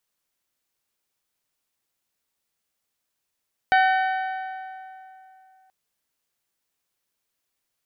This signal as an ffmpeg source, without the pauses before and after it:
ffmpeg -f lavfi -i "aevalsrc='0.178*pow(10,-3*t/2.85)*sin(2*PI*758*t)+0.106*pow(10,-3*t/2.315)*sin(2*PI*1516*t)+0.0631*pow(10,-3*t/2.192)*sin(2*PI*1819.2*t)+0.0376*pow(10,-3*t/2.05)*sin(2*PI*2274*t)+0.0224*pow(10,-3*t/1.88)*sin(2*PI*3032*t)+0.0133*pow(10,-3*t/1.759)*sin(2*PI*3790*t)+0.00794*pow(10,-3*t/1.665)*sin(2*PI*4548*t)':duration=1.98:sample_rate=44100" out.wav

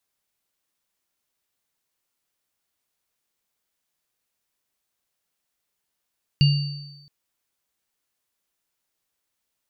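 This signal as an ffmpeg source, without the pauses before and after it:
ffmpeg -f lavfi -i "aevalsrc='0.266*pow(10,-3*t/0.98)*sin(2*PI*144*t)+0.0668*pow(10,-3*t/0.58)*sin(2*PI*2810*t)+0.075*pow(10,-3*t/1.31)*sin(2*PI*4570*t)':duration=0.67:sample_rate=44100" out.wav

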